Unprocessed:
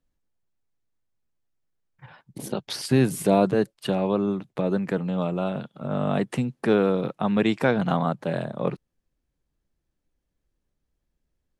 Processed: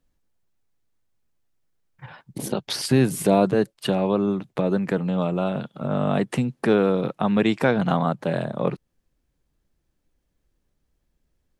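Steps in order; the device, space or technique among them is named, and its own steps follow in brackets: parallel compression (in parallel at -1 dB: compression, threshold -31 dBFS, peak gain reduction 15.5 dB)

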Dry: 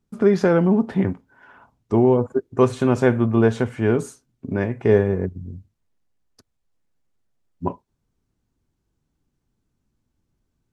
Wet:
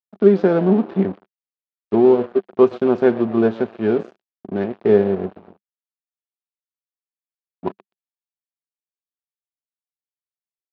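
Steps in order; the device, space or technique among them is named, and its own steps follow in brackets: frequency-shifting echo 124 ms, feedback 50%, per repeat +110 Hz, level -16 dB; blown loudspeaker (crossover distortion -30.5 dBFS; cabinet simulation 130–4100 Hz, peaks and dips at 130 Hz -8 dB, 200 Hz +7 dB, 380 Hz +8 dB, 700 Hz +4 dB, 2 kHz -4 dB); trim -1.5 dB

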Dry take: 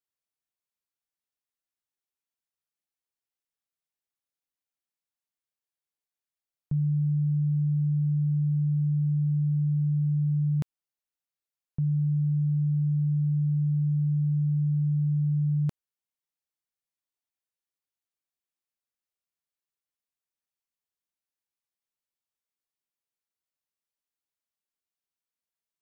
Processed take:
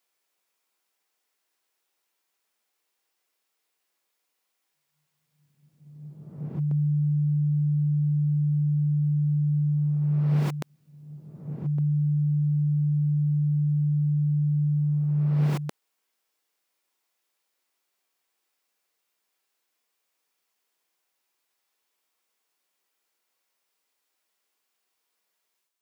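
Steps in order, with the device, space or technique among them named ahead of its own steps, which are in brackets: ghost voice (reverse; reverberation RT60 1.3 s, pre-delay 119 ms, DRR -7.5 dB; reverse; high-pass 360 Hz 12 dB/octave); trim +8.5 dB

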